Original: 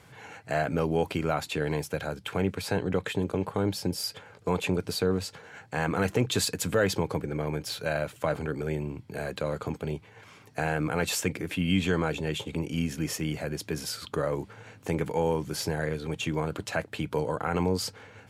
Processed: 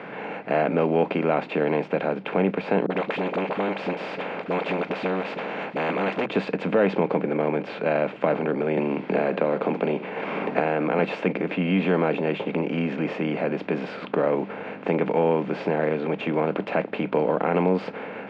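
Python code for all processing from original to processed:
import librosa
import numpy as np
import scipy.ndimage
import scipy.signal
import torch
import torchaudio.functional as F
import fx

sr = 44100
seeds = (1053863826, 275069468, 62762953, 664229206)

y = fx.chain(x, sr, fx.low_shelf(hz=390.0, db=-8.5),
    fx.dispersion(late='highs', ms=44.0, hz=350.0),
    fx.spectral_comp(ratio=2.0), at=(2.86, 6.26))
y = fx.chain(y, sr, fx.highpass(hz=160.0, slope=12),
    fx.echo_single(ms=70, db=-21.5),
    fx.band_squash(depth_pct=100), at=(8.77, 10.99))
y = fx.bin_compress(y, sr, power=0.6)
y = scipy.signal.sosfilt(scipy.signal.cheby1(3, 1.0, [190.0, 2400.0], 'bandpass', fs=sr, output='sos'), y)
y = fx.dynamic_eq(y, sr, hz=1600.0, q=1.6, threshold_db=-44.0, ratio=4.0, max_db=-6)
y = y * 10.0 ** (4.0 / 20.0)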